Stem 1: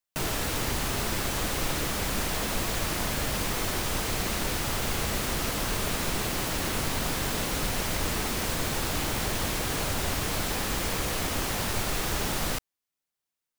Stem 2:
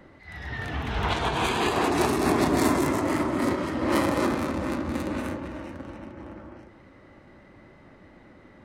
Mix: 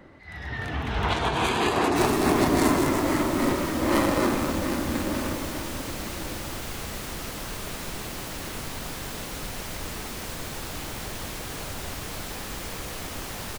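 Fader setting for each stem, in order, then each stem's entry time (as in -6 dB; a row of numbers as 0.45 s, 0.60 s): -5.5 dB, +1.0 dB; 1.80 s, 0.00 s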